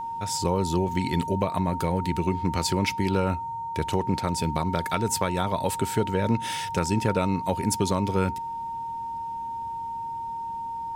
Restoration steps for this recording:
hum removal 115.3 Hz, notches 10
notch filter 920 Hz, Q 30

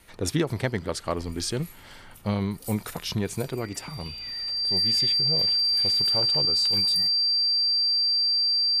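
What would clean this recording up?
notch filter 4,700 Hz, Q 30

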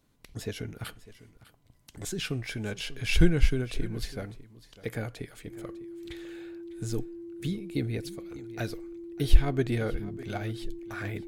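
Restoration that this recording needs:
notch filter 340 Hz, Q 30
echo removal 601 ms −17.5 dB

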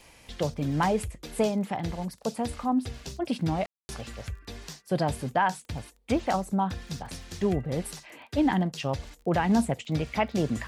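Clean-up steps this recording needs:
click removal
ambience match 0:03.66–0:03.89

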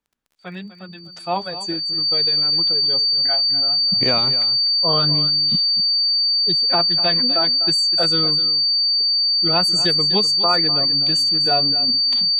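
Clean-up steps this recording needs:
click removal
notch filter 4,600 Hz, Q 30
echo removal 249 ms −14 dB

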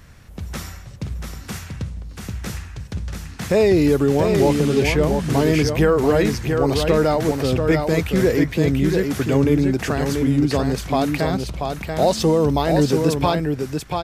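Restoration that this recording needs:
clipped peaks rebuilt −6 dBFS
echo removal 686 ms −5 dB

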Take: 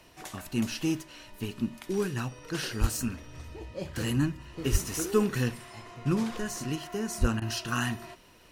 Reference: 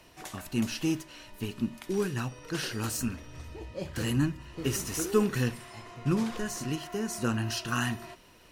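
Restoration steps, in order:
high-pass at the plosives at 0:02.80/0:04.71/0:07.20
repair the gap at 0:07.40, 16 ms

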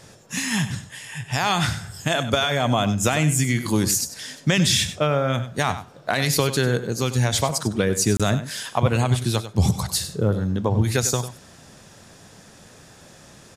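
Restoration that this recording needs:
repair the gap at 0:08.17, 26 ms
echo removal 97 ms −12.5 dB

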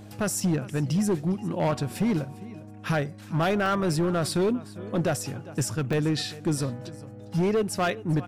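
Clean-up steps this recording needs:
clipped peaks rebuilt −19.5 dBFS
hum removal 103.1 Hz, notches 3
repair the gap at 0:02.00/0:03.66/0:05.93, 1.5 ms
echo removal 404 ms −19.5 dB

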